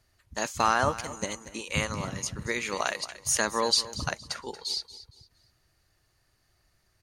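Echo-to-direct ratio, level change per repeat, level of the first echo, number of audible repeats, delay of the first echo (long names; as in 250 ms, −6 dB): −15.0 dB, −10.0 dB, −15.5 dB, 2, 232 ms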